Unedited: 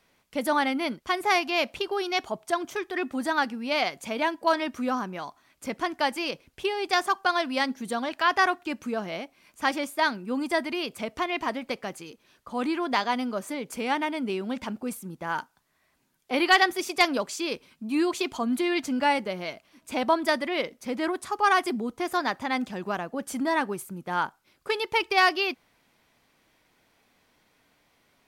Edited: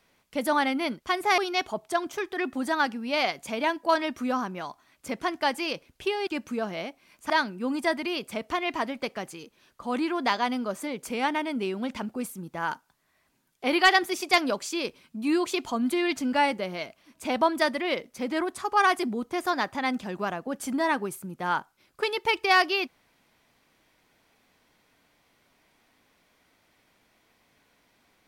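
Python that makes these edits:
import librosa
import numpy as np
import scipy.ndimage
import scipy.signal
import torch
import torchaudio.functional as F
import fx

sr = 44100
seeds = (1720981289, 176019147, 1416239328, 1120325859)

y = fx.edit(x, sr, fx.cut(start_s=1.38, length_s=0.58),
    fx.cut(start_s=6.85, length_s=1.77),
    fx.cut(start_s=9.65, length_s=0.32), tone=tone)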